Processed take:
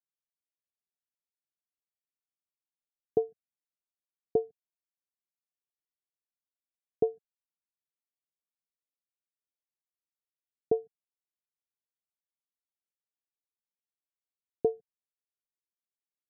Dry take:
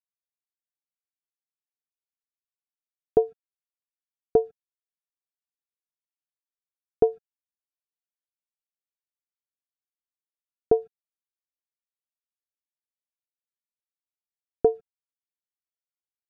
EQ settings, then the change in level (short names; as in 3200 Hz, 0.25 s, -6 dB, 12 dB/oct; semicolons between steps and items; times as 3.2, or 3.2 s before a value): running mean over 33 samples; HPF 96 Hz; -5.5 dB